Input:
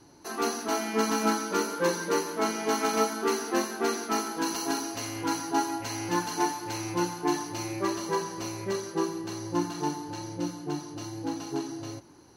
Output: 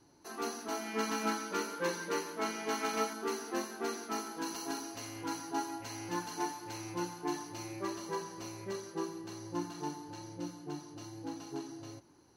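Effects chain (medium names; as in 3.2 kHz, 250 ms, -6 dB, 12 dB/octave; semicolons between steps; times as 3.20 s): 0.83–3.13 s: dynamic bell 2.3 kHz, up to +5 dB, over -41 dBFS, Q 0.87; trim -9 dB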